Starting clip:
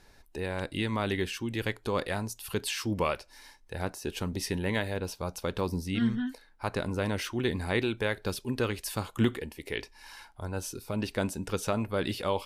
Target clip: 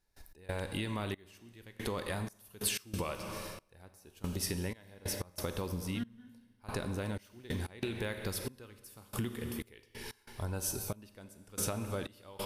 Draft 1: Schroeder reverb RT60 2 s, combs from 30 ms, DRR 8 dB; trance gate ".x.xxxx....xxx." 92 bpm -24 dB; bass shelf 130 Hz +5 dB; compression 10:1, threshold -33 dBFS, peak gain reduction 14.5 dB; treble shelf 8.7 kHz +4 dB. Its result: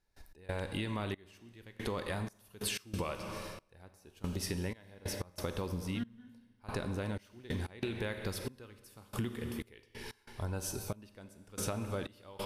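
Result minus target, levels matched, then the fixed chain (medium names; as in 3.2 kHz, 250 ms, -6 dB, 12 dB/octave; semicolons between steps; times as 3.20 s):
8 kHz band -3.5 dB
Schroeder reverb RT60 2 s, combs from 30 ms, DRR 8 dB; trance gate ".x.xxxx....xxx." 92 bpm -24 dB; bass shelf 130 Hz +5 dB; compression 10:1, threshold -33 dBFS, peak gain reduction 14.5 dB; treble shelf 8.7 kHz +13.5 dB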